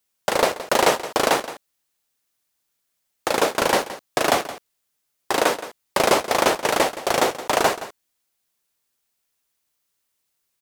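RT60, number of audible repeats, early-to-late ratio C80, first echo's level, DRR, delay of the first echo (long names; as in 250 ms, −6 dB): no reverb audible, 1, no reverb audible, −14.5 dB, no reverb audible, 170 ms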